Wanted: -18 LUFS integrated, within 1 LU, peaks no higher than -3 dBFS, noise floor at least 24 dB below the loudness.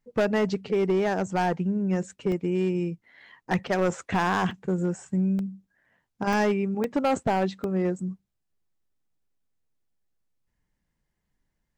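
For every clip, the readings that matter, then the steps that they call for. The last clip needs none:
clipped 1.3%; flat tops at -18.0 dBFS; dropouts 7; longest dropout 1.3 ms; loudness -26.5 LUFS; peak -18.0 dBFS; loudness target -18.0 LUFS
-> clip repair -18 dBFS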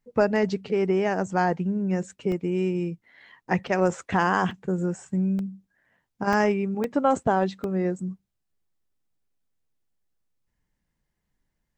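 clipped 0.0%; dropouts 7; longest dropout 1.3 ms
-> interpolate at 2.32/3.67/4.51/5.39/6.33/6.84/7.64, 1.3 ms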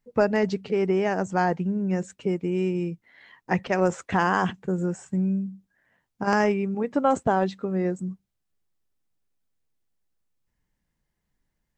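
dropouts 0; loudness -25.5 LUFS; peak -8.0 dBFS; loudness target -18.0 LUFS
-> gain +7.5 dB; limiter -3 dBFS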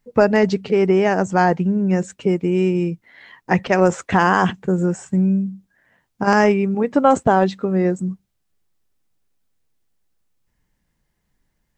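loudness -18.5 LUFS; peak -3.0 dBFS; noise floor -72 dBFS

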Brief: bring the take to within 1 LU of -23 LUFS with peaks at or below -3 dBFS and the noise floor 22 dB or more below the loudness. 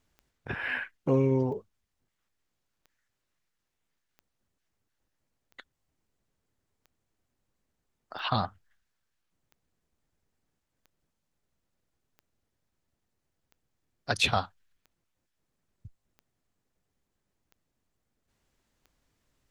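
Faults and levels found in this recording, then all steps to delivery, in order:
clicks 15; loudness -29.5 LUFS; peak -10.0 dBFS; loudness target -23.0 LUFS
-> de-click; gain +6.5 dB

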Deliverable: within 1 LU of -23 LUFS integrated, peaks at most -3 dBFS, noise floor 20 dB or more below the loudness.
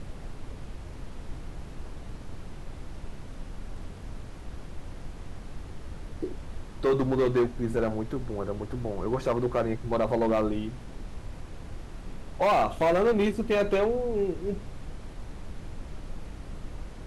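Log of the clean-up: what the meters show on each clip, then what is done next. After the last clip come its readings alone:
clipped 1.3%; flat tops at -19.0 dBFS; noise floor -42 dBFS; noise floor target -48 dBFS; loudness -27.5 LUFS; peak -19.0 dBFS; loudness target -23.0 LUFS
-> clip repair -19 dBFS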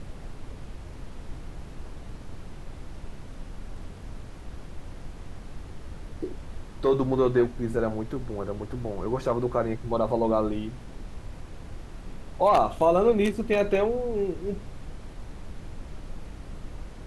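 clipped 0.0%; noise floor -42 dBFS; noise floor target -46 dBFS
-> noise print and reduce 6 dB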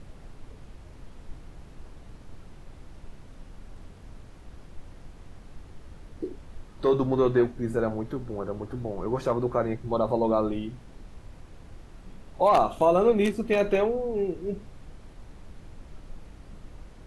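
noise floor -48 dBFS; loudness -26.5 LUFS; peak -10.0 dBFS; loudness target -23.0 LUFS
-> gain +3.5 dB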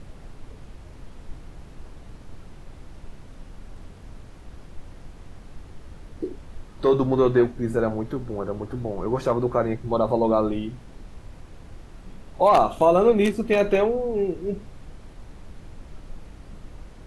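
loudness -23.0 LUFS; peak -6.5 dBFS; noise floor -45 dBFS

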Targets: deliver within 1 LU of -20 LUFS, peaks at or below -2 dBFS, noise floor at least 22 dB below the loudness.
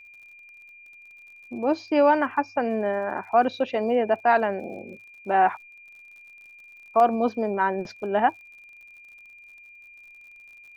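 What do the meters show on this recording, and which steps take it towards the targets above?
ticks 56/s; steady tone 2400 Hz; tone level -46 dBFS; loudness -23.5 LUFS; peak -8.0 dBFS; loudness target -20.0 LUFS
-> de-click; notch 2400 Hz, Q 30; gain +3.5 dB

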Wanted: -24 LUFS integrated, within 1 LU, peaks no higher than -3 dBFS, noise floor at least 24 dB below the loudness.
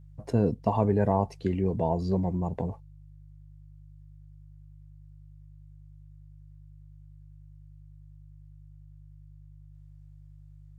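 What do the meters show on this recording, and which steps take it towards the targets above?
hum 50 Hz; harmonics up to 150 Hz; hum level -49 dBFS; loudness -28.0 LUFS; peak -9.5 dBFS; loudness target -24.0 LUFS
-> de-hum 50 Hz, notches 3; gain +4 dB

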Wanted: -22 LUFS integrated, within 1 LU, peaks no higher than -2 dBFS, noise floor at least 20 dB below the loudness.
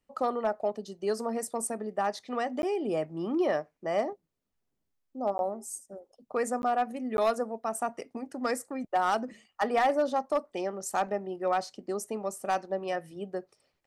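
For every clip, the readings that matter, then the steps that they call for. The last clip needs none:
clipped 0.3%; flat tops at -19.0 dBFS; dropouts 4; longest dropout 11 ms; loudness -31.5 LUFS; peak -19.0 dBFS; loudness target -22.0 LUFS
-> clip repair -19 dBFS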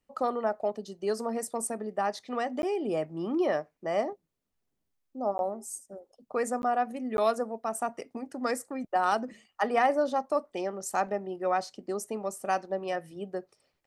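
clipped 0.0%; dropouts 4; longest dropout 11 ms
-> interpolate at 2.62/5.38/6.62/7.17, 11 ms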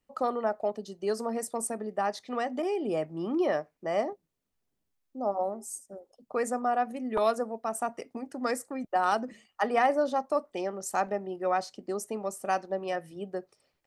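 dropouts 0; loudness -31.0 LUFS; peak -12.5 dBFS; loudness target -22.0 LUFS
-> gain +9 dB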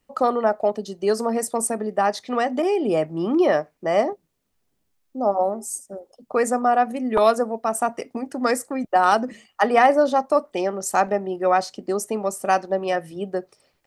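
loudness -22.0 LUFS; peak -3.5 dBFS; noise floor -72 dBFS

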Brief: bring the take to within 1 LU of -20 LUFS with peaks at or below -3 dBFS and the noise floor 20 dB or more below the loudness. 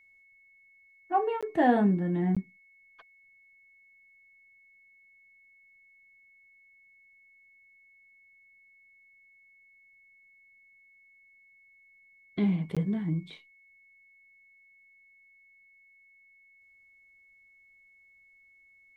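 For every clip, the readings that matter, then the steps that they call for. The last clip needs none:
dropouts 3; longest dropout 16 ms; steady tone 2200 Hz; tone level -58 dBFS; loudness -28.5 LUFS; peak -11.5 dBFS; loudness target -20.0 LUFS
-> interpolate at 1.41/2.35/12.75, 16 ms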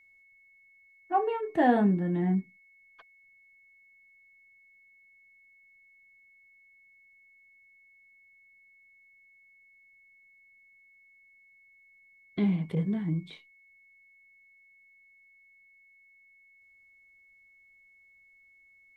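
dropouts 0; steady tone 2200 Hz; tone level -58 dBFS
-> notch 2200 Hz, Q 30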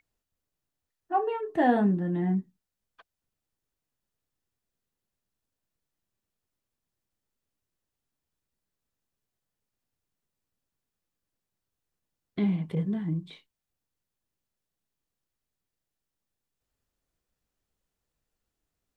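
steady tone none; loudness -28.0 LUFS; peak -11.5 dBFS; loudness target -20.0 LUFS
-> gain +8 dB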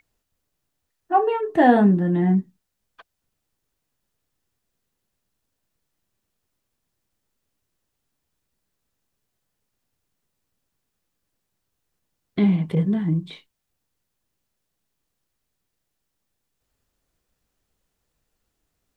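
loudness -20.0 LUFS; peak -3.5 dBFS; noise floor -79 dBFS

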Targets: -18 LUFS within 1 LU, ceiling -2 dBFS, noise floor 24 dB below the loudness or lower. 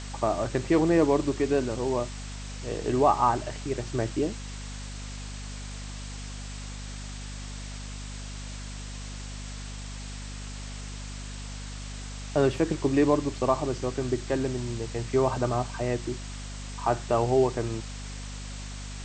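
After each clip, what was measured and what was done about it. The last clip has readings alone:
hum 50 Hz; harmonics up to 250 Hz; hum level -36 dBFS; noise floor -38 dBFS; noise floor target -54 dBFS; loudness -29.5 LUFS; peak -9.5 dBFS; loudness target -18.0 LUFS
-> notches 50/100/150/200/250 Hz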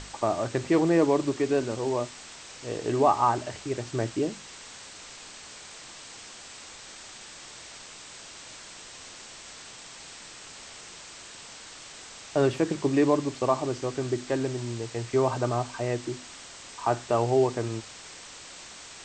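hum none; noise floor -46 dBFS; noise floor target -51 dBFS
-> denoiser 6 dB, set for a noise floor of -46 dBFS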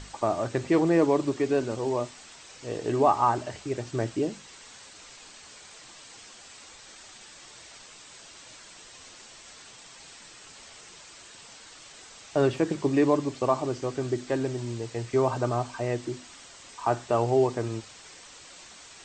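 noise floor -49 dBFS; noise floor target -51 dBFS
-> denoiser 6 dB, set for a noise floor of -49 dBFS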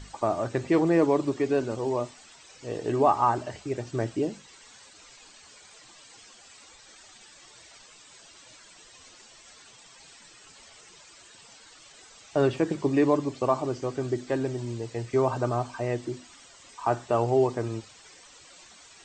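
noise floor -53 dBFS; loudness -27.0 LUFS; peak -10.0 dBFS; loudness target -18.0 LUFS
-> gain +9 dB; limiter -2 dBFS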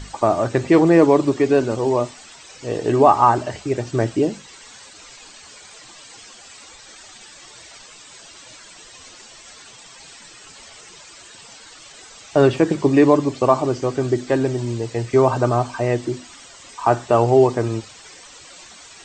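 loudness -18.5 LUFS; peak -2.0 dBFS; noise floor -44 dBFS

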